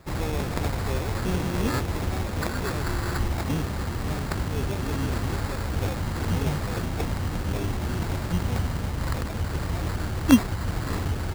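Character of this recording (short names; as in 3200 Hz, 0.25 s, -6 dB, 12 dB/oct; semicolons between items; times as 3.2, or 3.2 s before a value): aliases and images of a low sample rate 3000 Hz, jitter 0%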